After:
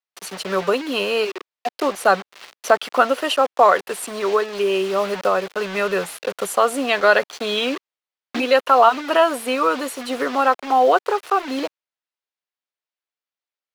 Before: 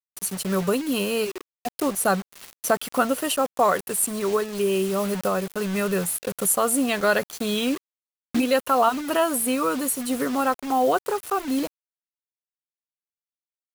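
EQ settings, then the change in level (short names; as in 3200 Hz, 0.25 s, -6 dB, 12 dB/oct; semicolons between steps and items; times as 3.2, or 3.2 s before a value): three-band isolator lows -17 dB, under 360 Hz, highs -19 dB, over 5200 Hz; +7.0 dB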